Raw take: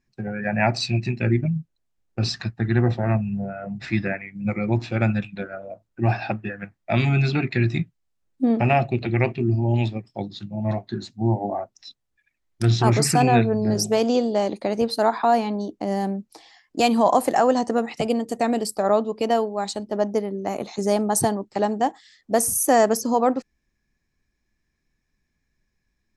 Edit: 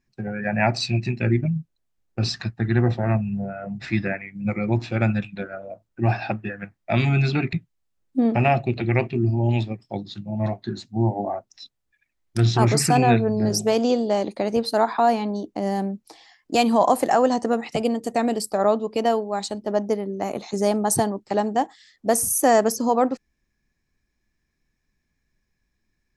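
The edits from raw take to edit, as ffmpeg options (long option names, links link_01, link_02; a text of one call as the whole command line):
ffmpeg -i in.wav -filter_complex "[0:a]asplit=2[link_01][link_02];[link_01]atrim=end=7.532[link_03];[link_02]atrim=start=7.778[link_04];[link_03][link_04]acrossfade=duration=0.004:curve1=hsin:curve2=hsin" out.wav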